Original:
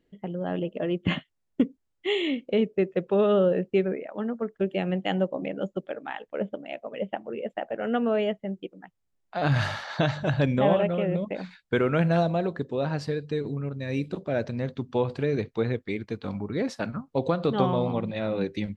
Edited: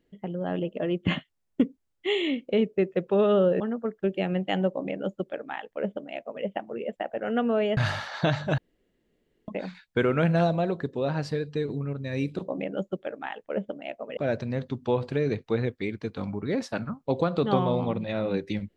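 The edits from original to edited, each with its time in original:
0:03.60–0:04.17: remove
0:05.32–0:07.01: duplicate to 0:14.24
0:08.34–0:09.53: remove
0:10.34–0:11.24: fill with room tone

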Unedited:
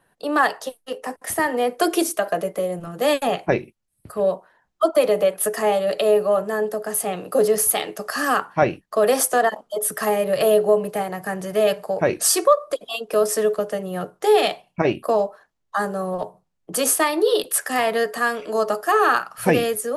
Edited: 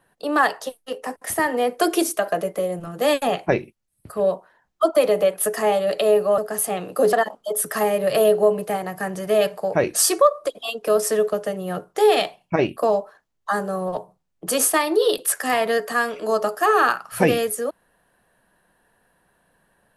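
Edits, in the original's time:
0:06.38–0:06.74: remove
0:07.49–0:09.39: remove

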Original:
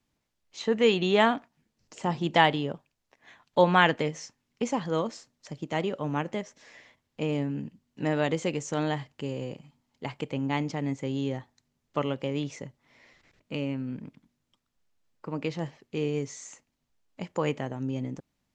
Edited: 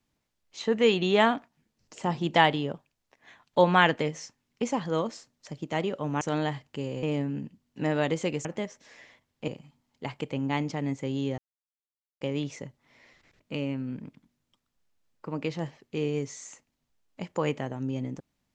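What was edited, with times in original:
0:06.21–0:07.24: swap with 0:08.66–0:09.48
0:11.38–0:12.21: silence

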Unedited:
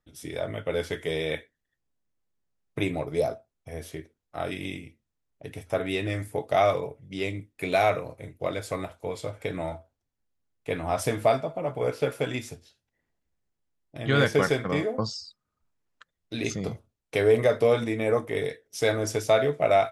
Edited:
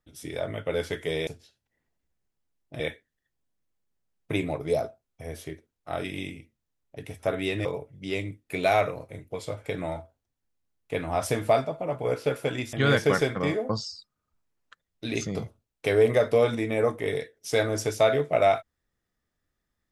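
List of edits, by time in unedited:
0:06.12–0:06.74: remove
0:08.43–0:09.10: remove
0:12.49–0:14.02: move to 0:01.27

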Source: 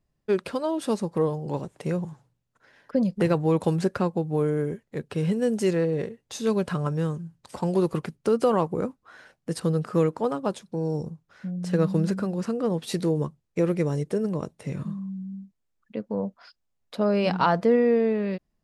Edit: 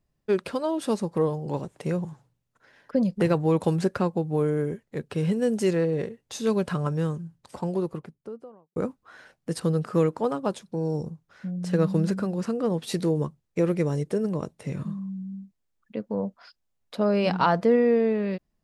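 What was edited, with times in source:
0:07.06–0:08.76: fade out and dull

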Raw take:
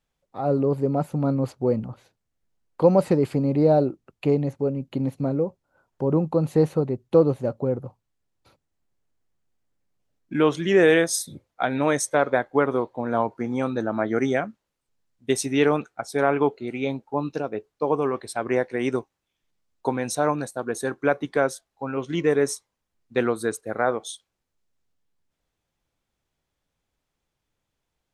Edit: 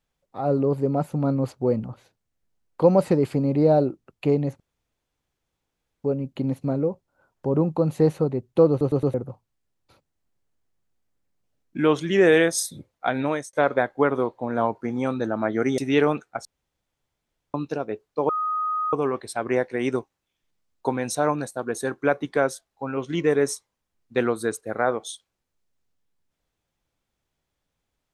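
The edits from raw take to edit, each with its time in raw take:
0:04.60: splice in room tone 1.44 s
0:07.26: stutter in place 0.11 s, 4 plays
0:11.76–0:12.09: fade out
0:14.34–0:15.42: remove
0:16.09–0:17.18: fill with room tone
0:17.93: insert tone 1,250 Hz −22.5 dBFS 0.64 s

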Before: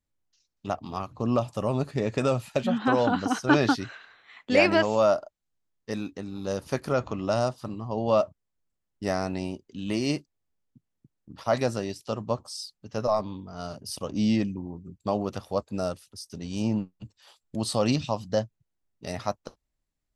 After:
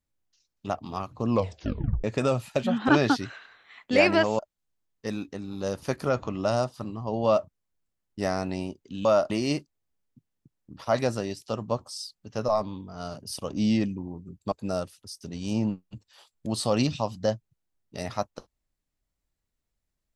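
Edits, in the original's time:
0:01.30: tape stop 0.74 s
0:02.89–0:03.48: remove
0:04.98–0:05.23: move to 0:09.89
0:15.11–0:15.61: remove

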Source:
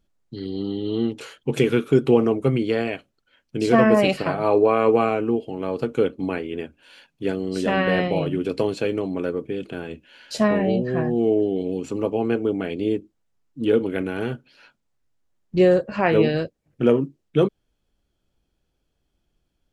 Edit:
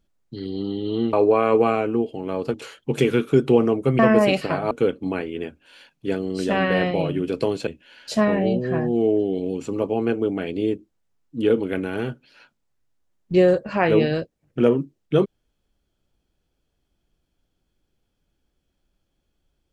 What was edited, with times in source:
0:02.58–0:03.75: remove
0:04.47–0:05.88: move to 0:01.13
0:08.84–0:09.90: remove

